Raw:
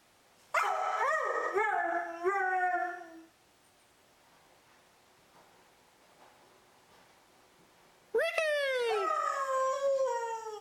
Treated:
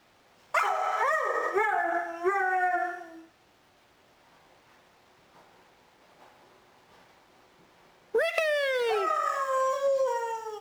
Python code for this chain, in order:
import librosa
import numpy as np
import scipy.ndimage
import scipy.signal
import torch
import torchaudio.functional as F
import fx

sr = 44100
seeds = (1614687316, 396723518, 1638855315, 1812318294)

y = scipy.signal.medfilt(x, 5)
y = y * 10.0 ** (4.0 / 20.0)